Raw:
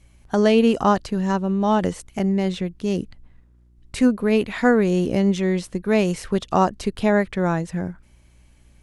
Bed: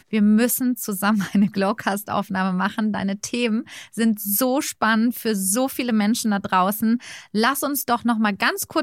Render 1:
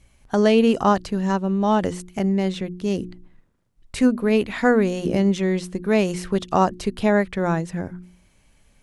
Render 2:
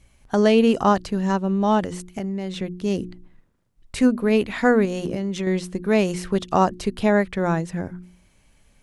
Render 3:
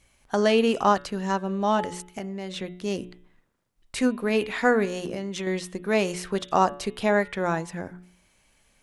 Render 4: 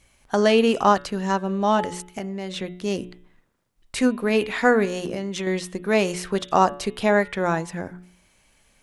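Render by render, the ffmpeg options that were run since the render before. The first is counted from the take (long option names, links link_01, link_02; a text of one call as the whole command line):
ffmpeg -i in.wav -af "bandreject=frequency=60:width_type=h:width=4,bandreject=frequency=120:width_type=h:width=4,bandreject=frequency=180:width_type=h:width=4,bandreject=frequency=240:width_type=h:width=4,bandreject=frequency=300:width_type=h:width=4,bandreject=frequency=360:width_type=h:width=4" out.wav
ffmpeg -i in.wav -filter_complex "[0:a]asettb=1/sr,asplit=3[link_01][link_02][link_03];[link_01]atrim=end=1.804[link_04];[link_02]atrim=start=1.8:end=2.57,asetpts=PTS-STARTPTS,afade=type=in:duration=0.004:curve=qsin,afade=type=out:start_time=0.766:duration=0.004:curve=qsin,acompressor=threshold=-24dB:ratio=5:attack=3.2:release=140:knee=1:detection=peak[link_05];[link_03]atrim=start=2.566[link_06];[link_04][link_05]acrossfade=duration=0.004:curve1=hsin:curve2=qsin[link_07];[link_07][link_06]acrossfade=duration=0.004:curve1=qsin:curve2=hsin,asettb=1/sr,asplit=3[link_08][link_09][link_10];[link_08]atrim=end=4.854[link_11];[link_09]atrim=start=4.85:end=5.47,asetpts=PTS-STARTPTS,afade=type=in:duration=0.004:curve=qsin,afade=type=out:start_time=0.616:duration=0.004:curve=qsin,acompressor=threshold=-21dB:ratio=10:attack=3.2:release=140:knee=1:detection=peak[link_12];[link_10]atrim=start=5.466[link_13];[link_11][link_12]acrossfade=duration=0.004:curve1=hsin:curve2=qsin[link_14];[link_14][link_13]acrossfade=duration=0.004:curve1=qsin:curve2=hsin" out.wav
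ffmpeg -i in.wav -af "lowshelf=frequency=300:gain=-10.5,bandreject=frequency=142.9:width_type=h:width=4,bandreject=frequency=285.8:width_type=h:width=4,bandreject=frequency=428.7:width_type=h:width=4,bandreject=frequency=571.6:width_type=h:width=4,bandreject=frequency=714.5:width_type=h:width=4,bandreject=frequency=857.4:width_type=h:width=4,bandreject=frequency=1000.3:width_type=h:width=4,bandreject=frequency=1143.2:width_type=h:width=4,bandreject=frequency=1286.1:width_type=h:width=4,bandreject=frequency=1429:width_type=h:width=4,bandreject=frequency=1571.9:width_type=h:width=4,bandreject=frequency=1714.8:width_type=h:width=4,bandreject=frequency=1857.7:width_type=h:width=4,bandreject=frequency=2000.6:width_type=h:width=4,bandreject=frequency=2143.5:width_type=h:width=4,bandreject=frequency=2286.4:width_type=h:width=4,bandreject=frequency=2429.3:width_type=h:width=4,bandreject=frequency=2572.2:width_type=h:width=4,bandreject=frequency=2715.1:width_type=h:width=4,bandreject=frequency=2858:width_type=h:width=4,bandreject=frequency=3000.9:width_type=h:width=4,bandreject=frequency=3143.8:width_type=h:width=4,bandreject=frequency=3286.7:width_type=h:width=4,bandreject=frequency=3429.6:width_type=h:width=4,bandreject=frequency=3572.5:width_type=h:width=4,bandreject=frequency=3715.4:width_type=h:width=4,bandreject=frequency=3858.3:width_type=h:width=4" out.wav
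ffmpeg -i in.wav -af "volume=3dB" out.wav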